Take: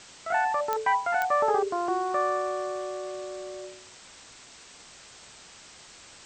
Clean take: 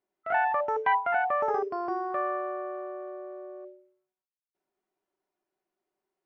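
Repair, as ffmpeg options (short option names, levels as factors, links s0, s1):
-af "adeclick=t=4,afwtdn=0.005,asetnsamples=n=441:p=0,asendcmd='1.31 volume volume -3.5dB',volume=1"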